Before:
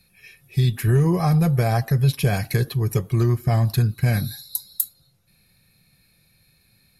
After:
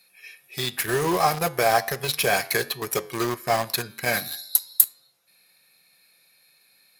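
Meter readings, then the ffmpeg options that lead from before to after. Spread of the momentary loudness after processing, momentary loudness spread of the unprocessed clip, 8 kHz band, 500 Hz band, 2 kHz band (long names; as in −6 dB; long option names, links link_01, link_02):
8 LU, 8 LU, +7.0 dB, +2.5 dB, +7.0 dB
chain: -filter_complex "[0:a]highpass=540,asplit=2[link_01][link_02];[link_02]acrusher=bits=4:mix=0:aa=0.000001,volume=-3.5dB[link_03];[link_01][link_03]amix=inputs=2:normalize=0,flanger=delay=9.9:depth=1.3:regen=-90:speed=1.4:shape=triangular,volume=7dB"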